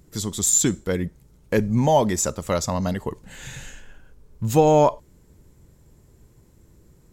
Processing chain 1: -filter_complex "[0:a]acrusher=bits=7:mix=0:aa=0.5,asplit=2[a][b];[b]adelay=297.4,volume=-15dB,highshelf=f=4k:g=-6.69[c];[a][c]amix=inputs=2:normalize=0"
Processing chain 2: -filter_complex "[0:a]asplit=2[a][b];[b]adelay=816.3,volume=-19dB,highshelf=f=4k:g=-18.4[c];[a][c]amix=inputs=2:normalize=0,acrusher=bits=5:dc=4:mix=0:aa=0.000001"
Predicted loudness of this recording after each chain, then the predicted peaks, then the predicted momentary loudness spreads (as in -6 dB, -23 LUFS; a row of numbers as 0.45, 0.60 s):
-21.5, -21.0 LUFS; -5.0, -5.5 dBFS; 20, 17 LU